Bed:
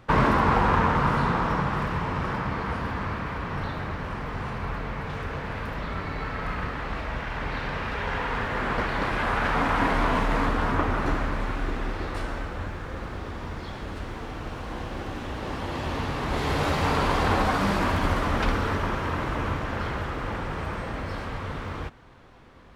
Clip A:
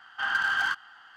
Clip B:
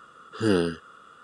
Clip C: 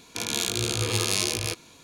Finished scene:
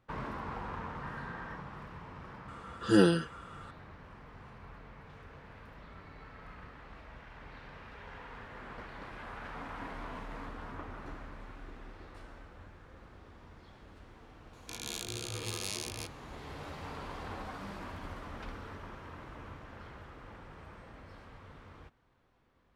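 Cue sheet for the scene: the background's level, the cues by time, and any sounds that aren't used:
bed −19.5 dB
0:00.83: mix in A −4.5 dB + formant resonators in series e
0:02.48: mix in B −3.5 dB + comb filter 5.9 ms, depth 94%
0:14.53: mix in C −13 dB

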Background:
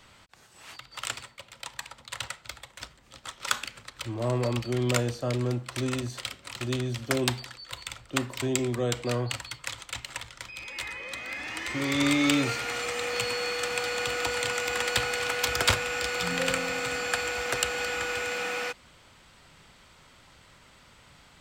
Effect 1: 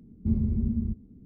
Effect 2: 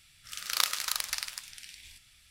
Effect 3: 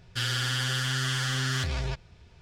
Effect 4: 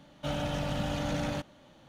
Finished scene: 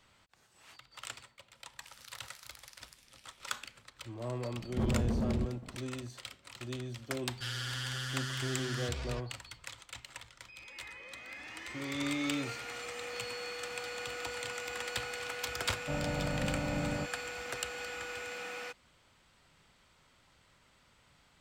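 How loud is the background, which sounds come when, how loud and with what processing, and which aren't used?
background −10.5 dB
0:01.55: mix in 2 −15 dB + downward compressor 3 to 1, threshold −35 dBFS
0:04.52: mix in 1 −14.5 dB + leveller curve on the samples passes 5
0:07.25: mix in 3 −9.5 dB
0:15.64: mix in 4 −2 dB + Bessel low-pass filter 930 Hz

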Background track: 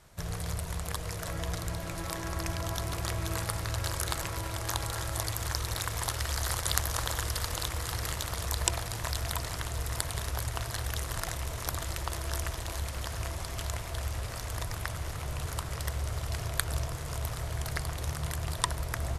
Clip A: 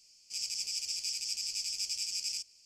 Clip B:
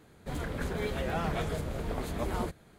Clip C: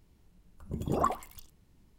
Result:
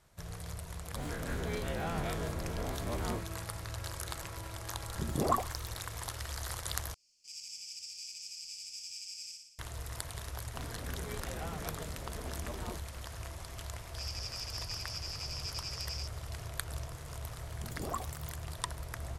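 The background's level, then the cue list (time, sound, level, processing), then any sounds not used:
background track −8 dB
0:00.70: mix in B −8 dB + every bin's largest magnitude spread in time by 60 ms
0:04.28: mix in C −1.5 dB
0:06.94: overwrite with A −11 dB + flutter between parallel walls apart 10.1 metres, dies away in 0.79 s
0:10.28: mix in B −10 dB
0:13.65: mix in A −3 dB + low-pass filter 5,400 Hz 24 dB per octave
0:16.90: mix in C −10.5 dB + bass and treble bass −1 dB, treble +13 dB

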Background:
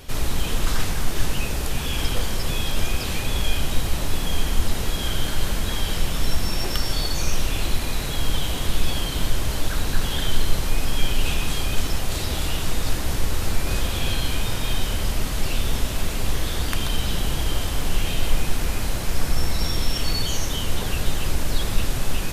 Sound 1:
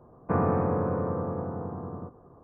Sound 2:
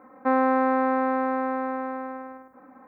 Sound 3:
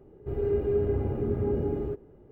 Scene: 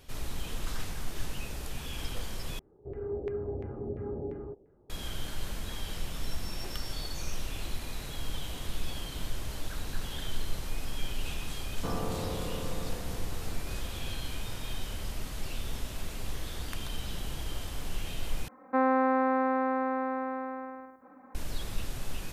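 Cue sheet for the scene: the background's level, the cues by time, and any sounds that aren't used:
background −13 dB
0:02.59: overwrite with 3 −10 dB + auto-filter low-pass saw down 2.9 Hz 520–2,100 Hz
0:11.54: mix in 1 −10 dB
0:18.48: overwrite with 2 −4 dB

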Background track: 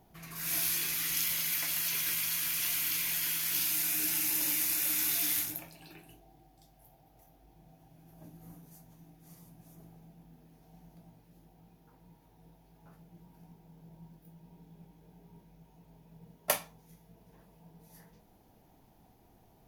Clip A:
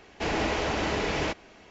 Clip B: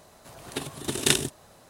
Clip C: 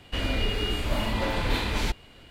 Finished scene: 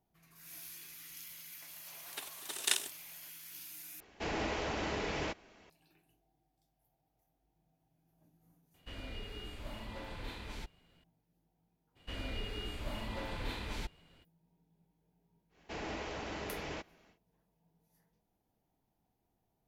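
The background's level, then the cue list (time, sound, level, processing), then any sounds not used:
background track −18 dB
0:01.61: mix in B −8.5 dB + high-pass filter 800 Hz
0:04.00: overwrite with A −8.5 dB
0:08.74: mix in C −18 dB
0:11.95: mix in C −13.5 dB, fades 0.02 s
0:15.49: mix in A −13.5 dB, fades 0.10 s

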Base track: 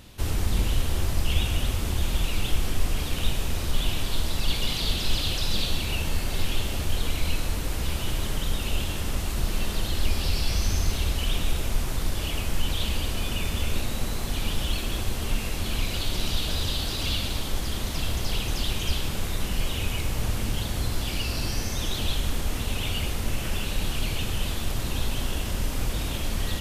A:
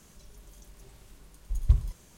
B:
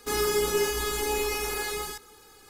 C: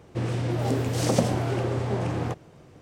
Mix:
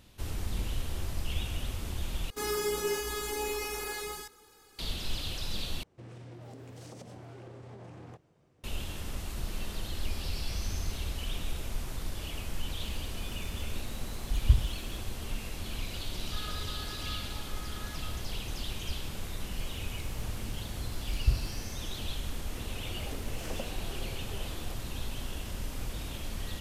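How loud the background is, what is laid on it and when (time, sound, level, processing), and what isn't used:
base track −9.5 dB
0:02.30: overwrite with B −6 dB
0:05.83: overwrite with C −16.5 dB + downward compressor 10 to 1, threshold −26 dBFS
0:12.80: mix in A −0.5 dB + pitch vibrato 1.9 Hz 23 cents
0:16.25: mix in B −4 dB + resonant band-pass 1,400 Hz, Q 7.4
0:19.58: mix in A −4 dB
0:22.41: mix in C −16.5 dB + high-pass filter 280 Hz

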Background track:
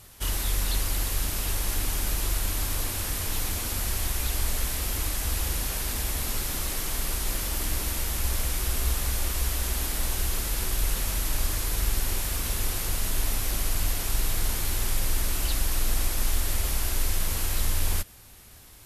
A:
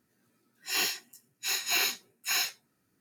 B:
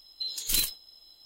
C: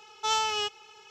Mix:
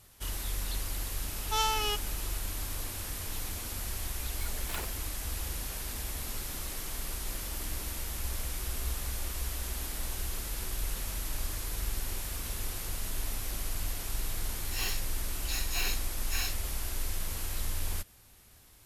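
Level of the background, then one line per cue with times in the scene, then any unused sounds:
background track −8 dB
0:01.28: mix in C −2.5 dB
0:04.20: mix in B −14.5 dB + sample-and-hold swept by an LFO 10×, swing 60% 3.3 Hz
0:14.04: mix in A −7 dB

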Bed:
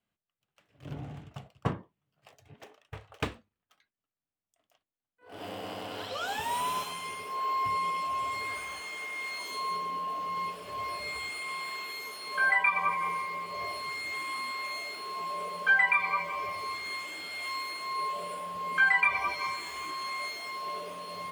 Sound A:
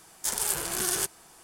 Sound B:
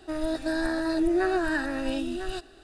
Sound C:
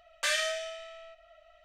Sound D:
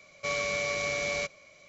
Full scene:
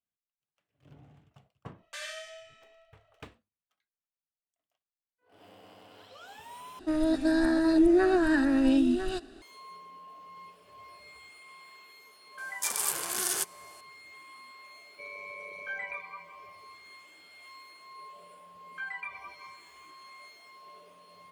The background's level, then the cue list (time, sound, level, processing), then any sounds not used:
bed −15 dB
0:01.70: mix in C −12.5 dB + single-tap delay 88 ms −5 dB
0:06.79: overwrite with B −1.5 dB + parametric band 250 Hz +11.5 dB 0.71 octaves
0:12.38: mix in A −2 dB + high-pass filter 430 Hz 6 dB per octave
0:14.75: mix in D −13.5 dB + spectral envelope exaggerated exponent 3

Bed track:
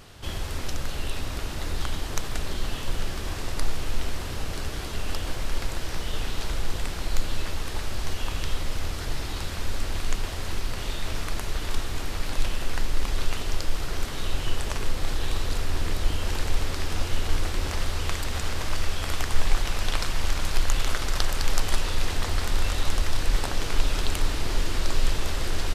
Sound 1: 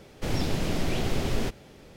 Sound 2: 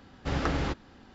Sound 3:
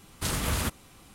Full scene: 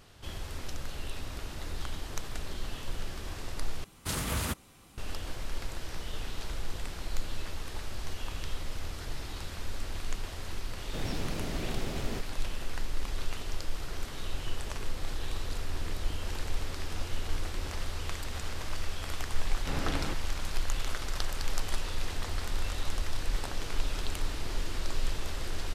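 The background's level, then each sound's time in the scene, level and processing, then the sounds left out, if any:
bed track −8 dB
0:03.84: overwrite with 3 −3.5 dB
0:10.71: mix in 1 −8 dB
0:19.41: mix in 2 −5.5 dB

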